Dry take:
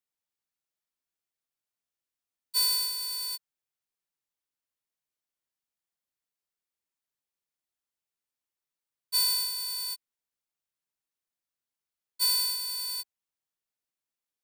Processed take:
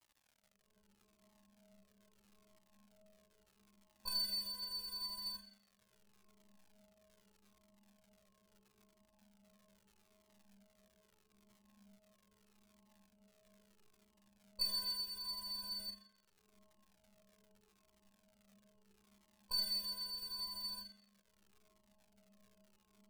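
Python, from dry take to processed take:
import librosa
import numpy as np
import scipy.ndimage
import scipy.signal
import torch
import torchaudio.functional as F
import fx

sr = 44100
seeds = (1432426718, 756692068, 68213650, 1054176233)

y = fx.wiener(x, sr, points=25)
y = fx.recorder_agc(y, sr, target_db=-26.5, rise_db_per_s=62.0, max_gain_db=30)
y = fx.tilt_shelf(y, sr, db=10.0, hz=810.0)
y = fx.stiff_resonator(y, sr, f0_hz=210.0, decay_s=0.62, stiffness=0.002)
y = fx.stretch_grains(y, sr, factor=1.6, grain_ms=85.0)
y = fx.ripple_eq(y, sr, per_octave=1.3, db=14)
y = fx.dmg_crackle(y, sr, seeds[0], per_s=160.0, level_db=-69.0)
y = fx.comb_cascade(y, sr, direction='falling', hz=0.78)
y = F.gain(torch.from_numpy(y), 17.5).numpy()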